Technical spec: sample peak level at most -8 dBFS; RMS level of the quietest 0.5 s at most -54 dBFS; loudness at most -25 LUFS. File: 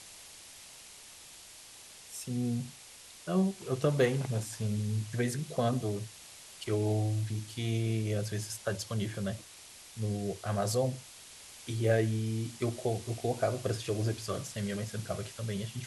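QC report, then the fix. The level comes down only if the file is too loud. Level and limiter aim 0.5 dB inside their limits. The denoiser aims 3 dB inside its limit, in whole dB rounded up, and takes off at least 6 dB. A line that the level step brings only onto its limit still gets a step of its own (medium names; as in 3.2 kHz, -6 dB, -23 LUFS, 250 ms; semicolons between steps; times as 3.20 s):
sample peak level -15.0 dBFS: pass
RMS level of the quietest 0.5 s -52 dBFS: fail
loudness -33.5 LUFS: pass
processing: noise reduction 6 dB, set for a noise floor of -52 dBFS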